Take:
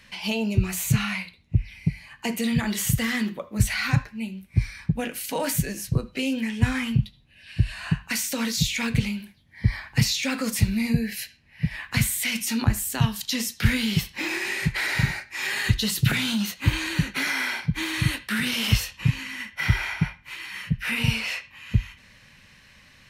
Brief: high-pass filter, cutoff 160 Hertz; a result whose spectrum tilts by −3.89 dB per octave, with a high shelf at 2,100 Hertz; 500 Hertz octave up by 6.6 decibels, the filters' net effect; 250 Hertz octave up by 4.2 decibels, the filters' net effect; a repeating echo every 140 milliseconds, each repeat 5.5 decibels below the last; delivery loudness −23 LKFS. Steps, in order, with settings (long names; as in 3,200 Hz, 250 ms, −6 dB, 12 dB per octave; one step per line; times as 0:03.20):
high-pass filter 160 Hz
parametric band 250 Hz +5.5 dB
parametric band 500 Hz +6 dB
high-shelf EQ 2,100 Hz +4 dB
repeating echo 140 ms, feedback 53%, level −5.5 dB
level −0.5 dB